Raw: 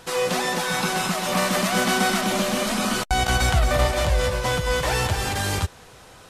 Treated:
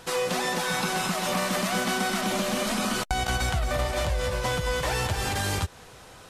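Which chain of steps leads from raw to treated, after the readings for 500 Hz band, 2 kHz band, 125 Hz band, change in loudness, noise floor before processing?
−4.5 dB, −4.5 dB, −5.0 dB, −4.5 dB, −47 dBFS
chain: downward compressor, threshold −22 dBFS, peak gain reduction 7.5 dB
level −1 dB

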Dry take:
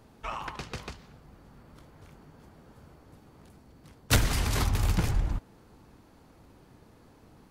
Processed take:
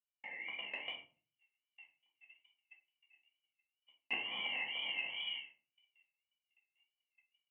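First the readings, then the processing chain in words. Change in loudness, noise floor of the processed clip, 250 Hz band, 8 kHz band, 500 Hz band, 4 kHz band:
−10.0 dB, below −85 dBFS, −25.5 dB, below −40 dB, −18.0 dB, −2.5 dB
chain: formant filter u
voice inversion scrambler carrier 3,100 Hz
parametric band 2,100 Hz +4.5 dB 0.48 octaves
tape wow and flutter 99 cents
noise gate −58 dBFS, range −46 dB
downward compressor 6 to 1, threshold −54 dBFS, peak gain reduction 19.5 dB
high-pass filter 160 Hz 12 dB per octave
rectangular room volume 230 cubic metres, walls furnished, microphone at 2.1 metres
automatic gain control gain up to 8.5 dB
level +3.5 dB

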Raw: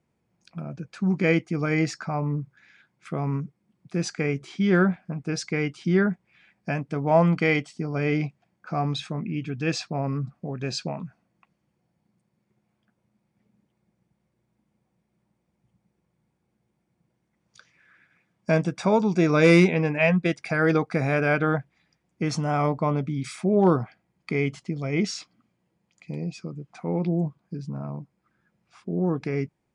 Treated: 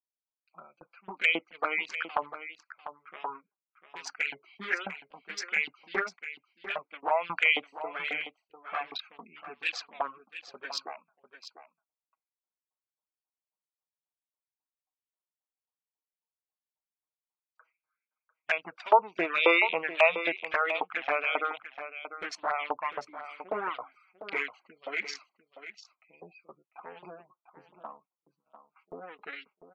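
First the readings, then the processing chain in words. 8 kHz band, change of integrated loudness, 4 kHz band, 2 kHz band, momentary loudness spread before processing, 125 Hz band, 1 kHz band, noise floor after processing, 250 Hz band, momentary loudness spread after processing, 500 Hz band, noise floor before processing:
−9.5 dB, −5.0 dB, −0.5 dB, 0.0 dB, 16 LU, below −35 dB, −1.0 dB, below −85 dBFS, −21.5 dB, 23 LU, −8.5 dB, −75 dBFS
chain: adaptive Wiener filter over 25 samples
high-pass filter 190 Hz 12 dB per octave
auto-filter high-pass saw up 3.7 Hz 900–3,400 Hz
noise gate with hold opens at −52 dBFS
high-shelf EQ 2,500 Hz −11.5 dB
automatic gain control gain up to 8 dB
gate on every frequency bin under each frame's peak −25 dB strong
flanger swept by the level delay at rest 6.5 ms, full sweep at −21.5 dBFS
on a send: single-tap delay 697 ms −12 dB
on the sum: level +1 dB

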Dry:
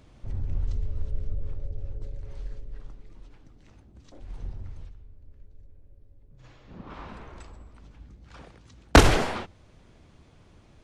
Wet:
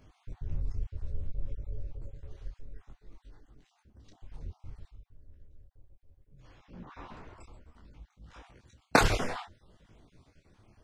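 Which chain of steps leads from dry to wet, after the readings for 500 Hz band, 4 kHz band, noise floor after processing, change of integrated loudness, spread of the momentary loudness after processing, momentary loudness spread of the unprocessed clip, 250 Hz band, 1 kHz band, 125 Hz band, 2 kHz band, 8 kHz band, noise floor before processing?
−7.0 dB, −7.5 dB, −72 dBFS, −7.5 dB, 27 LU, 26 LU, −8.5 dB, −5.0 dB, −9.0 dB, −4.5 dB, −7.0 dB, −56 dBFS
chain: time-frequency cells dropped at random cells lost 33%
micro pitch shift up and down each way 21 cents

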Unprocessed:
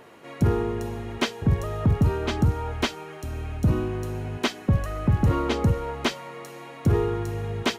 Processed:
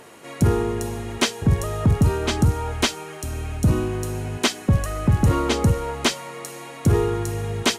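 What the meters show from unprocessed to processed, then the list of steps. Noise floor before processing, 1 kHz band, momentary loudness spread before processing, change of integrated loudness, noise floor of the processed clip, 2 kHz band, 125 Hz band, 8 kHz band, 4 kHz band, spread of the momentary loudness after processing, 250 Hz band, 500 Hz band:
−42 dBFS, +3.5 dB, 12 LU, +3.5 dB, −38 dBFS, +4.0 dB, +3.0 dB, +12.0 dB, +6.5 dB, 11 LU, +3.0 dB, +3.0 dB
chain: parametric band 9,000 Hz +12 dB 1.5 octaves
level +3 dB

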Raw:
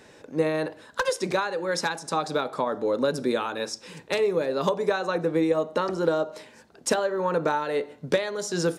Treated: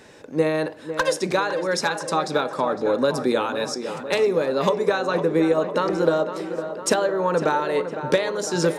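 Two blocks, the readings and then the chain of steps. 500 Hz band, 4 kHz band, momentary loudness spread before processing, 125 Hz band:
+4.0 dB, +3.5 dB, 6 LU, +4.0 dB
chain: on a send: tape delay 505 ms, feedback 72%, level −9 dB, low-pass 2,300 Hz
on the sum: level +3.5 dB

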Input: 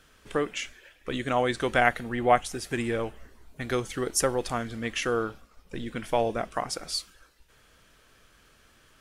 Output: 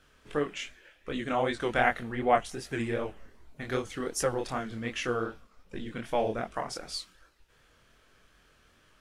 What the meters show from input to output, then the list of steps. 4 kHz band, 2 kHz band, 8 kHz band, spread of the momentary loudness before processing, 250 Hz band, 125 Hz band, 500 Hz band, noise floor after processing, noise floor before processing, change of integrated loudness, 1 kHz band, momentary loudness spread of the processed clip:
−4.5 dB, −3.5 dB, −7.0 dB, 13 LU, −2.5 dB, −3.0 dB, −3.0 dB, −64 dBFS, −60 dBFS, −3.0 dB, −3.0 dB, 13 LU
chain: chorus effect 2.6 Hz, delay 20 ms, depth 7.6 ms
high-shelf EQ 6,500 Hz −6.5 dB

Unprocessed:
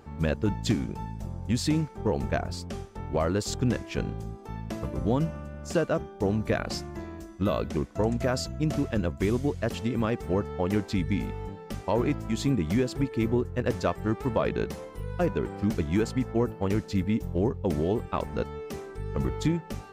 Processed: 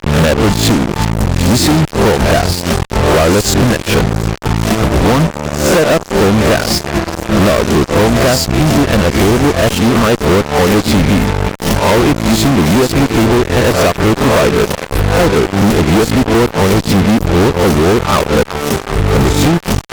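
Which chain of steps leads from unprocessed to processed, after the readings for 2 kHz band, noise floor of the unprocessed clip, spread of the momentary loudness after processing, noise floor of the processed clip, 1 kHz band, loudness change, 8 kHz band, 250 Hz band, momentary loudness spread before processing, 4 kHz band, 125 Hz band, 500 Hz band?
+22.0 dB, −45 dBFS, 5 LU, −25 dBFS, +20.5 dB, +17.5 dB, +23.0 dB, +16.5 dB, 10 LU, +23.0 dB, +16.5 dB, +17.5 dB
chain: peak hold with a rise ahead of every peak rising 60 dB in 0.52 s
reversed playback
upward compression, threshold −35 dBFS
reversed playback
transient designer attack +11 dB, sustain −5 dB
on a send: feedback echo with a high-pass in the loop 373 ms, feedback 81%, high-pass 830 Hz, level −20.5 dB
on the sum: fuzz pedal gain 38 dB, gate −36 dBFS
transient designer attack +2 dB, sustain −5 dB
boost into a limiter +15.5 dB
level −5.5 dB

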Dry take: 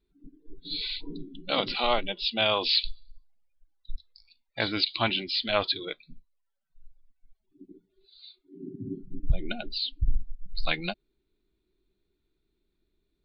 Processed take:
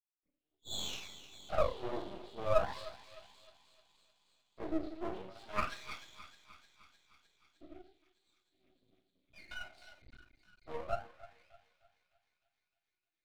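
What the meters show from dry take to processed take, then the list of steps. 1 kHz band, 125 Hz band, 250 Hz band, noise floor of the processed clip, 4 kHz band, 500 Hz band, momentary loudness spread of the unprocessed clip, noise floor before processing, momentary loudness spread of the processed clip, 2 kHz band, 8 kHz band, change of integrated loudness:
−8.0 dB, −12.5 dB, −9.0 dB, below −85 dBFS, −19.5 dB, −5.5 dB, 17 LU, −78 dBFS, 23 LU, −14.0 dB, can't be measured, −11.0 dB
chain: noise gate with hold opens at −49 dBFS
high-shelf EQ 3,900 Hz −8 dB
coupled-rooms reverb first 0.45 s, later 1.5 s, DRR −9 dB
LFO wah 0.36 Hz 330–3,400 Hz, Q 9.7
on a send: feedback echo with a high-pass in the loop 306 ms, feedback 76%, high-pass 1,100 Hz, level −12.5 dB
on the sum: half-wave rectification

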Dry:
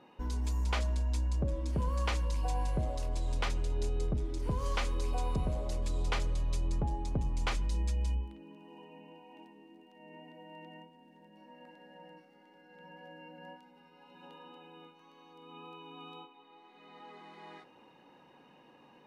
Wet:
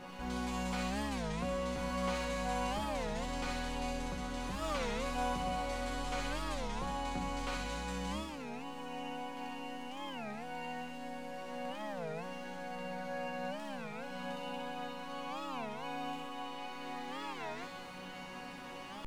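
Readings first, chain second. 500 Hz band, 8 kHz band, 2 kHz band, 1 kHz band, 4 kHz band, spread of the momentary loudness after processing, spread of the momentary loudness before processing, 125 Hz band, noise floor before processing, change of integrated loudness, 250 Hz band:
+3.5 dB, +1.5 dB, +4.0 dB, +5.5 dB, +2.5 dB, 8 LU, 20 LU, −9.5 dB, −61 dBFS, −5.0 dB, +3.5 dB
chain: compressor on every frequency bin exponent 0.4
reversed playback
upward compression, threshold −35 dBFS
reversed playback
dead-zone distortion −53.5 dBFS
resonators tuned to a chord F#3 sus4, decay 0.38 s
on a send: delay with a high-pass on its return 63 ms, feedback 75%, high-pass 1,700 Hz, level −3 dB
on the sum: wow of a warped record 33 1/3 rpm, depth 250 cents
level +10 dB

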